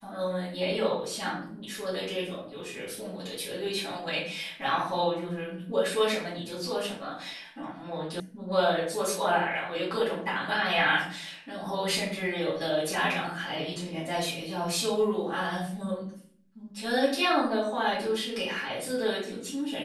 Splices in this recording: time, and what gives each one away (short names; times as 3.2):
8.2 sound cut off